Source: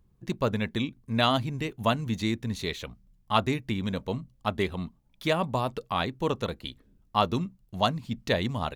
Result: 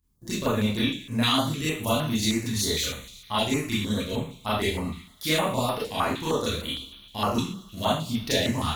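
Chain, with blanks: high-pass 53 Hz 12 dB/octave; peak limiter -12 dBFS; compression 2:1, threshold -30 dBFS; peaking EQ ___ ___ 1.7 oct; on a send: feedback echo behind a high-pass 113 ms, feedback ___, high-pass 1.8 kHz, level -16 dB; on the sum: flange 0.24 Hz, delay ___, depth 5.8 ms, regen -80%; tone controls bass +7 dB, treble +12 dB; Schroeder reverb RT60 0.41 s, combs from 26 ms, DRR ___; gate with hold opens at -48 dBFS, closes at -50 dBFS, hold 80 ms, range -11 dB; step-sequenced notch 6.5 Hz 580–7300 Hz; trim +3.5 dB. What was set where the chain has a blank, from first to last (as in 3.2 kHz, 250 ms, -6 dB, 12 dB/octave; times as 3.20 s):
140 Hz, -9 dB, 71%, 7.1 ms, -8.5 dB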